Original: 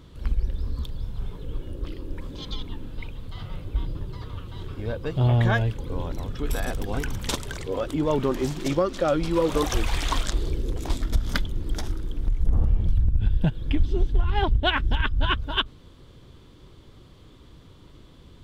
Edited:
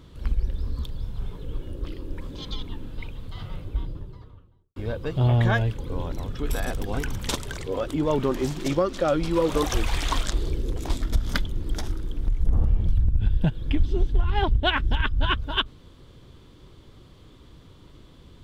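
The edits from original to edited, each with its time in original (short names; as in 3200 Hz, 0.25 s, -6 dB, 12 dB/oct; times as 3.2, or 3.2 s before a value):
3.45–4.76 studio fade out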